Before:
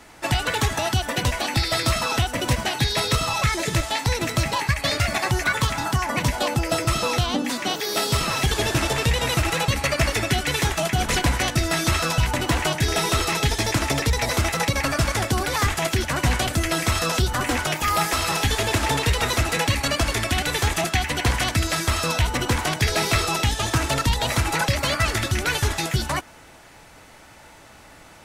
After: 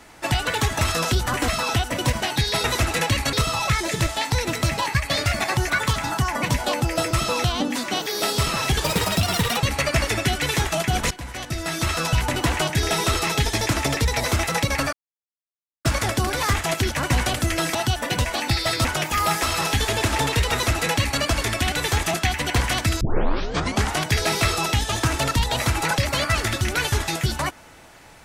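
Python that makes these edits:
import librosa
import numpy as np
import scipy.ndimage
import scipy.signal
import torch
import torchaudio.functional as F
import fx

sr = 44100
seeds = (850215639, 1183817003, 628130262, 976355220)

y = fx.edit(x, sr, fx.swap(start_s=0.81, length_s=1.1, other_s=16.88, other_length_s=0.67),
    fx.speed_span(start_s=8.58, length_s=1.04, speed=1.43),
    fx.fade_in_from(start_s=11.16, length_s=1.04, floor_db=-20.0),
    fx.insert_silence(at_s=14.98, length_s=0.92),
    fx.duplicate(start_s=19.22, length_s=0.69, to_s=3.07),
    fx.tape_start(start_s=21.71, length_s=0.96), tone=tone)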